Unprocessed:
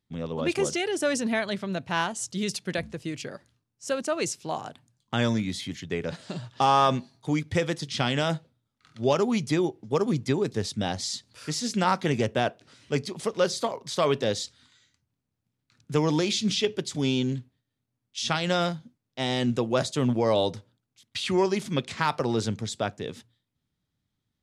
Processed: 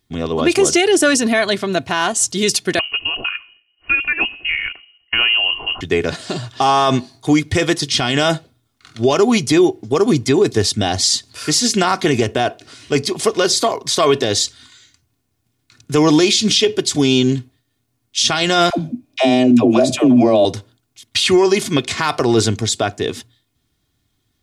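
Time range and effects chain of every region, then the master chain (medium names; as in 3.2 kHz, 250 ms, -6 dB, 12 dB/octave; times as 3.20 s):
2.79–5.81 s: de-hum 109.2 Hz, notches 9 + compression 2:1, threshold -30 dBFS + frequency inversion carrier 3 kHz
18.70–20.45 s: compression 2:1, threshold -37 dBFS + small resonant body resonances 270/590/2400 Hz, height 17 dB, ringing for 25 ms + phase dispersion lows, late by 92 ms, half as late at 470 Hz
whole clip: treble shelf 4.2 kHz +4.5 dB; comb 2.8 ms, depth 51%; loudness maximiser +16 dB; trim -3.5 dB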